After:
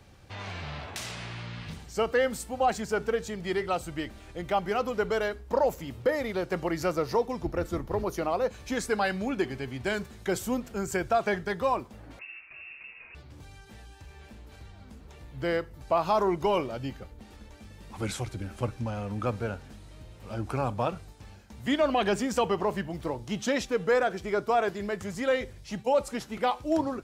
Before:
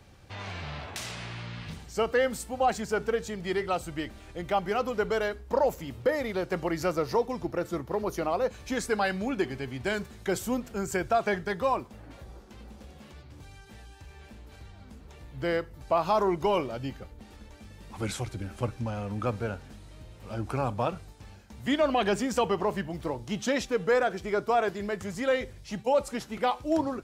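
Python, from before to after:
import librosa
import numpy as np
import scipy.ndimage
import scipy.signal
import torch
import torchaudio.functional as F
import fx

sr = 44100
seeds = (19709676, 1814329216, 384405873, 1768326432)

y = fx.octave_divider(x, sr, octaves=2, level_db=-1.0, at=(7.43, 8.04))
y = fx.freq_invert(y, sr, carrier_hz=2700, at=(12.19, 13.15))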